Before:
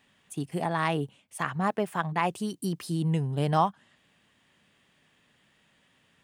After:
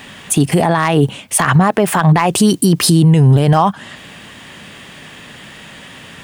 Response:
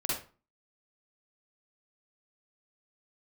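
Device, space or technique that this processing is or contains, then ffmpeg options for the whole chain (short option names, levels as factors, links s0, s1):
loud club master: -af "acompressor=threshold=0.0282:ratio=2,asoftclip=type=hard:threshold=0.0944,alimiter=level_in=39.8:limit=0.891:release=50:level=0:latency=1,volume=0.794"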